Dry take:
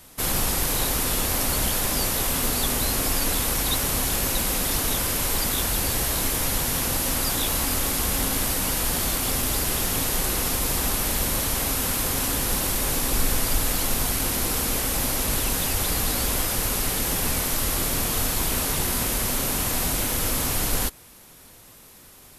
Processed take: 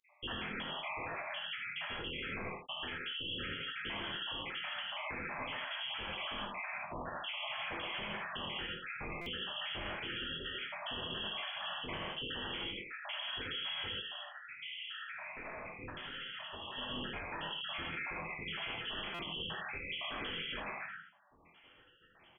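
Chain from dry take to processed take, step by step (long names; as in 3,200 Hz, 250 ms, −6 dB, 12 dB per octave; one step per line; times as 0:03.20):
time-frequency cells dropped at random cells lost 81%
spectral tilt +2 dB per octave
voice inversion scrambler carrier 3,300 Hz
ambience of single reflections 24 ms −8.5 dB, 77 ms −7.5 dB
reverb whose tail is shaped and stops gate 190 ms flat, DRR −3 dB
brickwall limiter −24 dBFS, peak gain reduction 8 dB
0:14.01–0:16.78: flanger 1.4 Hz, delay 6.6 ms, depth 3.6 ms, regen +82%
buffer that repeats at 0:09.21/0:19.14, samples 256, times 8
level −7.5 dB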